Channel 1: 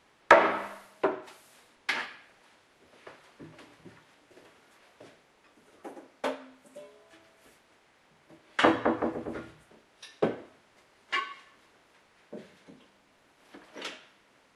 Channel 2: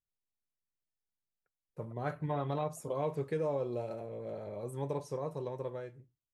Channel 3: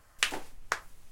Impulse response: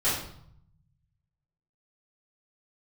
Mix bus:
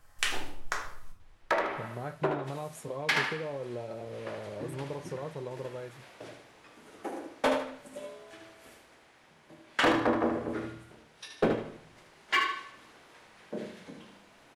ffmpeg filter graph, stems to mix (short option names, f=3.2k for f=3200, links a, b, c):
-filter_complex "[0:a]alimiter=limit=-8dB:level=0:latency=1:release=449,dynaudnorm=f=270:g=9:m=11dB,asoftclip=type=hard:threshold=-12.5dB,adelay=1200,volume=-6dB,asplit=3[a][b][c];[b]volume=-22dB[d];[c]volume=-5.5dB[e];[1:a]acompressor=threshold=-35dB:ratio=6,volume=1.5dB[f];[2:a]volume=-5.5dB,asplit=2[g][h];[h]volume=-9dB[i];[3:a]atrim=start_sample=2205[j];[d][i]amix=inputs=2:normalize=0[k];[k][j]afir=irnorm=-1:irlink=0[l];[e]aecho=0:1:76|152|228|304|380:1|0.33|0.109|0.0359|0.0119[m];[a][f][g][l][m]amix=inputs=5:normalize=0"